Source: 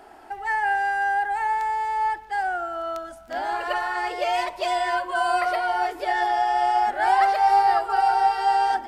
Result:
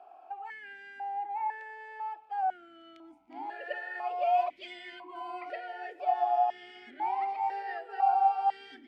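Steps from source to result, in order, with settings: stepped vowel filter 2 Hz

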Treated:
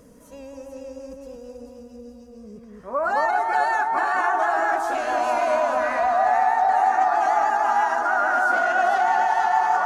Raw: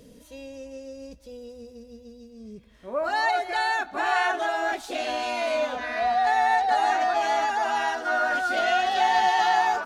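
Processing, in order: FFT filter 480 Hz 0 dB, 1.2 kHz +10 dB, 3.6 kHz -11 dB, 6.3 kHz +1 dB; peak limiter -15 dBFS, peak gain reduction 9 dB; vibrato 6.3 Hz 45 cents; on a send: echo whose repeats swap between lows and highs 220 ms, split 1.3 kHz, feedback 64%, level -2 dB

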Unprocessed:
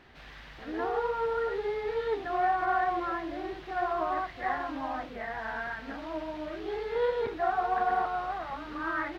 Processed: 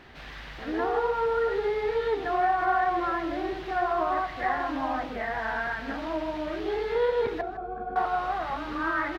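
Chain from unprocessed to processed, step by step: compression 1.5:1, threshold -33 dBFS, peak gain reduction 4 dB; 7.41–7.96 s: boxcar filter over 46 samples; delay 157 ms -14 dB; trim +6 dB

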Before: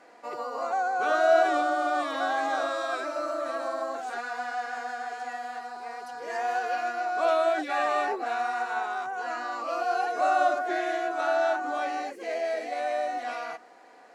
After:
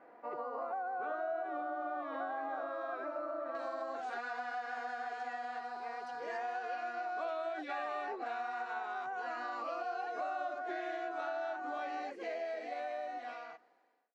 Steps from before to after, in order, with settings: fade out at the end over 1.93 s; low-pass 1.5 kHz 12 dB/octave, from 3.55 s 4.4 kHz; compression 5:1, threshold -33 dBFS, peak gain reduction 14.5 dB; trim -3.5 dB

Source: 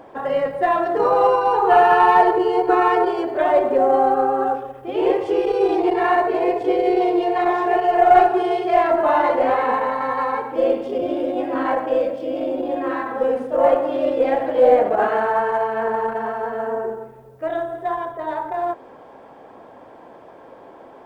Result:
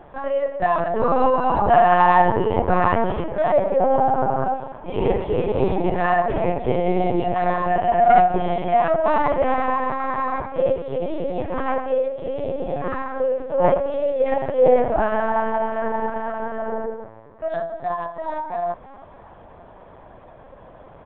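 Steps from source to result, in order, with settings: peaking EQ 73 Hz -11.5 dB 1.7 oct; on a send: frequency-shifting echo 318 ms, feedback 49%, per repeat +110 Hz, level -22.5 dB; on the sum: LPC vocoder at 8 kHz pitch kept; trim -1 dB

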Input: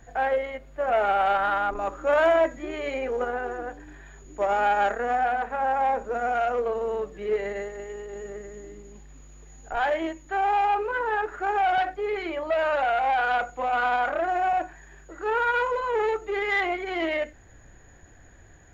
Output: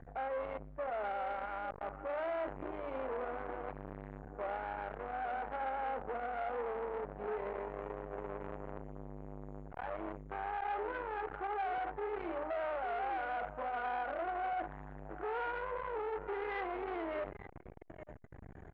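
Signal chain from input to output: low-pass 1.2 kHz 12 dB/octave; reverse; compression 12:1, threshold -34 dBFS, peak gain reduction 17 dB; reverse; peak limiter -36 dBFS, peak gain reduction 10.5 dB; feedback delay 861 ms, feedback 23%, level -11 dB; transformer saturation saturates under 760 Hz; trim +6 dB

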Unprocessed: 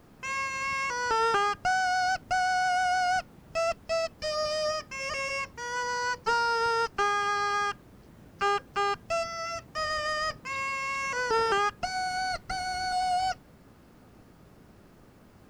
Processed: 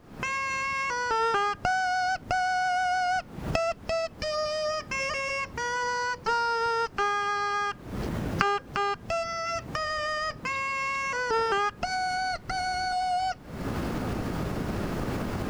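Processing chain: recorder AGC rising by 74 dB/s; treble shelf 7.4 kHz -7.5 dB

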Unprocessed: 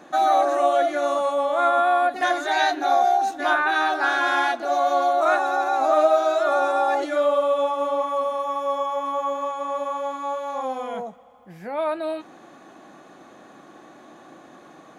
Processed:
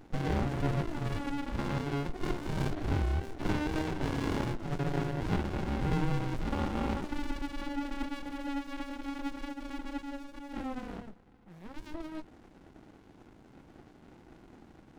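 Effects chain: sliding maximum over 65 samples; trim -4.5 dB

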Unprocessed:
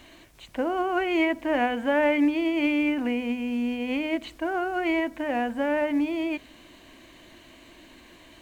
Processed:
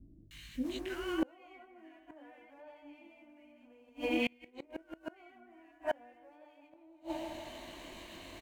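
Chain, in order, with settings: transient shaper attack -2 dB, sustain -7 dB; chorus 0.32 Hz, delay 18.5 ms, depth 4.2 ms; three bands offset in time lows, highs, mids 310/640 ms, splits 260/1600 Hz; Chebyshev shaper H 6 -41 dB, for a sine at -17 dBFS; on a send: band-passed feedback delay 159 ms, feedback 65%, band-pass 830 Hz, level -5.5 dB; on the sum: inverted gate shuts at -26 dBFS, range -33 dB; trim +5.5 dB

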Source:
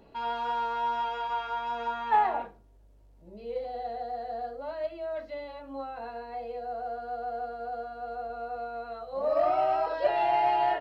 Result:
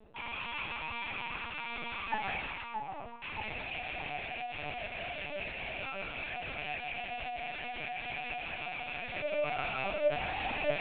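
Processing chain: rattle on loud lows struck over -52 dBFS, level -19 dBFS; chord resonator D3 sus4, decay 0.24 s; on a send: two-band feedback delay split 1.2 kHz, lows 627 ms, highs 160 ms, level -3 dB; on the sum: dynamic bell 740 Hz, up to -4 dB, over -49 dBFS, Q 0.82; LPC vocoder at 8 kHz pitch kept; reverse; upward compressor, threshold -45 dBFS; reverse; trim +7.5 dB

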